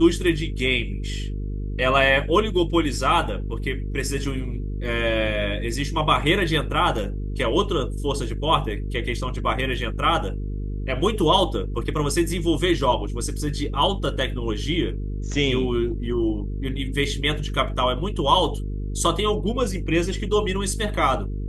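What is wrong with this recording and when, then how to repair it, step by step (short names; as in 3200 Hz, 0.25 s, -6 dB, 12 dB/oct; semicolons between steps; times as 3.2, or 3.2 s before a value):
buzz 50 Hz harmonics 9 -28 dBFS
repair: de-hum 50 Hz, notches 9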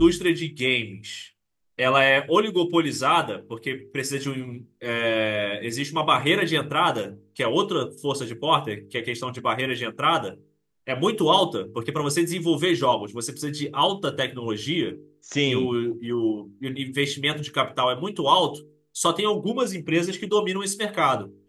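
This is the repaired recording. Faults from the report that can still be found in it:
none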